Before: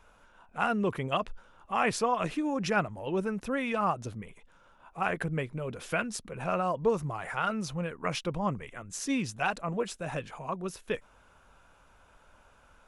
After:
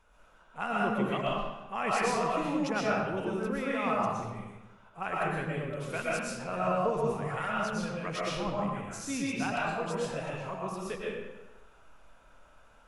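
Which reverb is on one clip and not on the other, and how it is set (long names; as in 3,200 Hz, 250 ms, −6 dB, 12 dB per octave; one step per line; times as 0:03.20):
comb and all-pass reverb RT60 1.1 s, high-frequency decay 0.75×, pre-delay 80 ms, DRR −5.5 dB
level −6.5 dB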